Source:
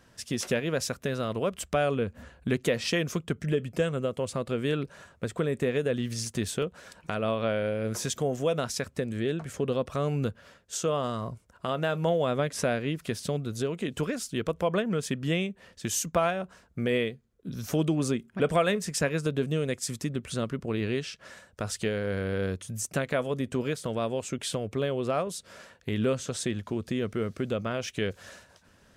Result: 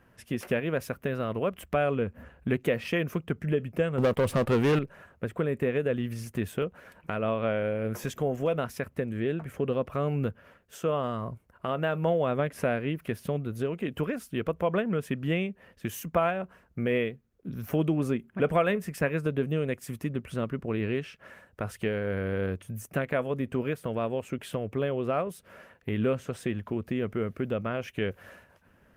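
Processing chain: band shelf 5800 Hz -12 dB; 3.98–4.79 sample leveller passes 3; Opus 32 kbps 48000 Hz

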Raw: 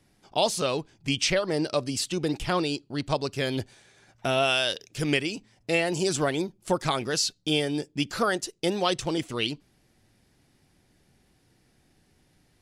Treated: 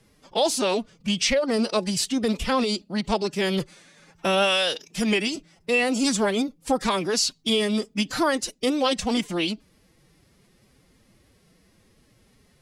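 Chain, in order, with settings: in parallel at -2 dB: limiter -19.5 dBFS, peak gain reduction 9 dB; on the sum: formant-preserving pitch shift +6.5 st

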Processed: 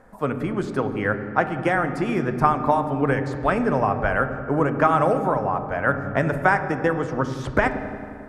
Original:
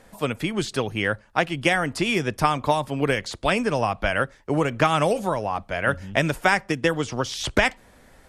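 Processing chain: resonant high shelf 2100 Hz -12.5 dB, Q 1.5; dark delay 90 ms, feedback 72%, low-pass 420 Hz, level -8 dB; reverb RT60 2.3 s, pre-delay 4 ms, DRR 8.5 dB

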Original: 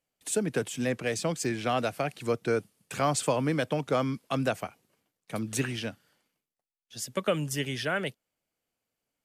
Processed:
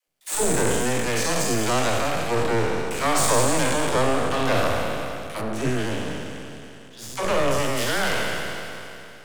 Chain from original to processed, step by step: spectral trails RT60 2.92 s; 5.4–7.76 LPF 1300 Hz -> 3500 Hz 6 dB/oct; half-wave rectifier; dispersion lows, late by 77 ms, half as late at 340 Hz; gain +6 dB

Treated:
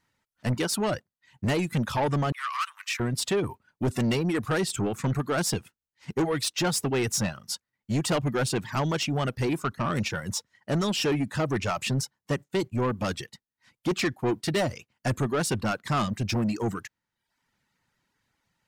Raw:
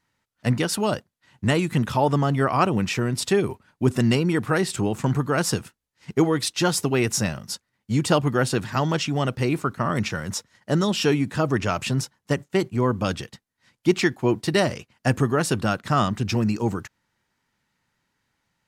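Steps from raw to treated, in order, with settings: reverb removal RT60 0.66 s; soft clip -20.5 dBFS, distortion -10 dB; 2.32–3 Chebyshev high-pass 1100 Hz, order 5

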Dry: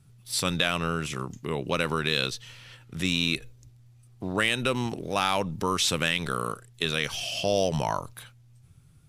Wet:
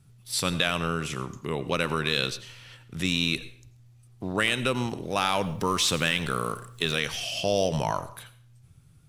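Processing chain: 5.42–7 G.711 law mismatch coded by mu; on a send: reverb RT60 0.50 s, pre-delay 79 ms, DRR 14.5 dB

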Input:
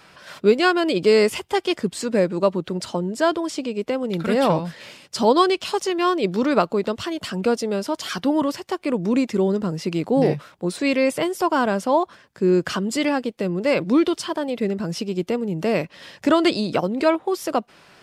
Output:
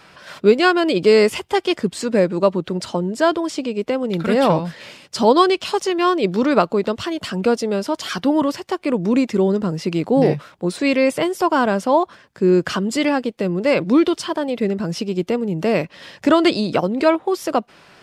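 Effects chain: high shelf 7500 Hz -4.5 dB; gain +3 dB

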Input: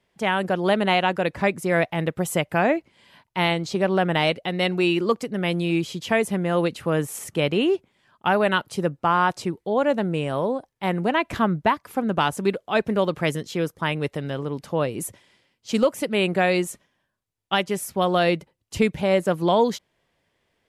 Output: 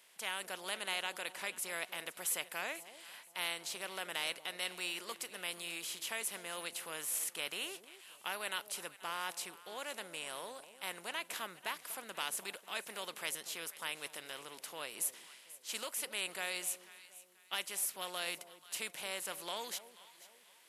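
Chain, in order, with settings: per-bin compression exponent 0.6; differentiator; echo with dull and thin repeats by turns 0.243 s, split 840 Hz, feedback 57%, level -12.5 dB; gain -7 dB

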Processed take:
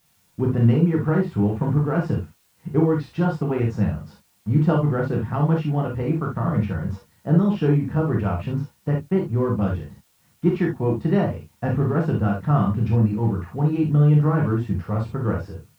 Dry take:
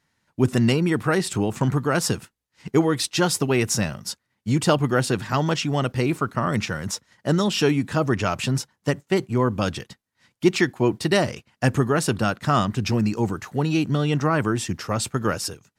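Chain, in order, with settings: block floating point 5-bit; LPF 1400 Hz 12 dB/oct; low shelf 210 Hz +10 dB; requantised 10-bit, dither triangular; non-linear reverb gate 90 ms flat, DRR -1.5 dB; gain -7 dB

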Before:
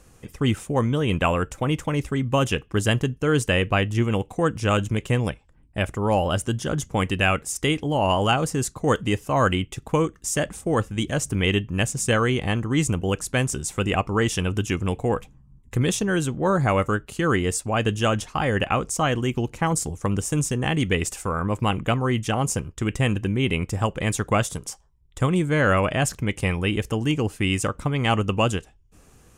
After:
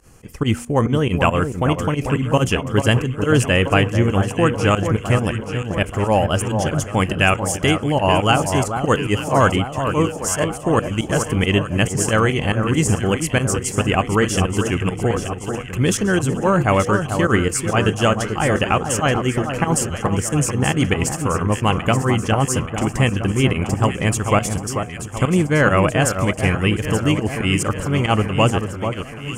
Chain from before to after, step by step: pump 139 bpm, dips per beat 2, -19 dB, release 84 ms; notch 3700 Hz, Q 5.9; de-hum 240.2 Hz, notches 3; on a send: echo with dull and thin repeats by turns 0.44 s, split 1500 Hz, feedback 75%, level -7 dB; on the sum: gain +5 dB

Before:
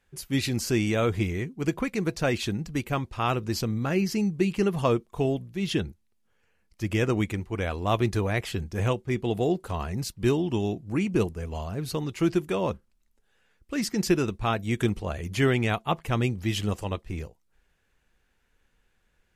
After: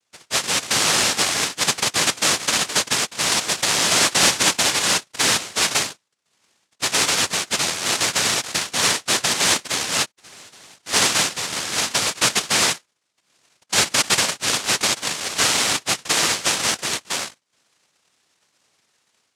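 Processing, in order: median filter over 9 samples; AGC gain up to 10 dB; limiter -10.5 dBFS, peak gain reduction 8 dB; 10.04–10.86 flipped gate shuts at -26 dBFS, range -26 dB; decimation with a swept rate 26×, swing 100% 1.8 Hz; noise vocoder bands 1

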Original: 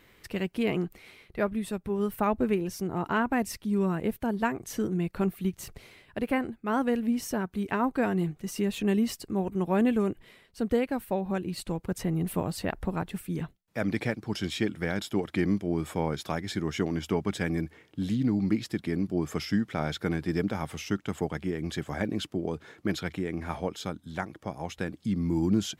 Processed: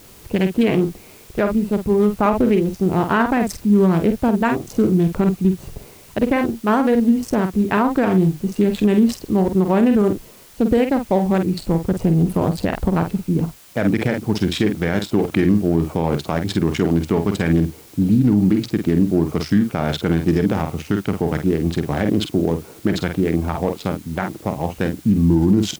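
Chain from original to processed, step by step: Wiener smoothing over 25 samples; in parallel at -10 dB: requantised 8-bit, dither triangular; on the sum: doubler 48 ms -8.5 dB; maximiser +17 dB; gain -6 dB

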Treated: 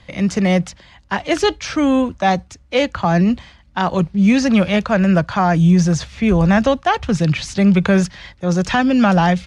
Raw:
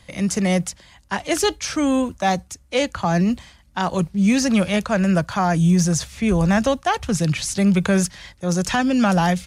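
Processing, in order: LPF 4200 Hz 12 dB/oct; gain +4 dB

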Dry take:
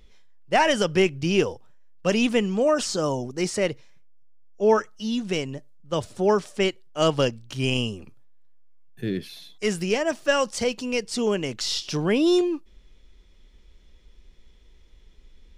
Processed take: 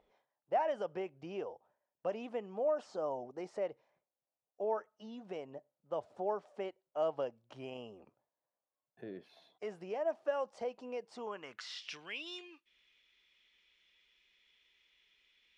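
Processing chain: compressor 2:1, threshold -36 dBFS, peak gain reduction 12 dB; band-pass sweep 710 Hz -> 2600 Hz, 11.04–12.02; gain +1.5 dB

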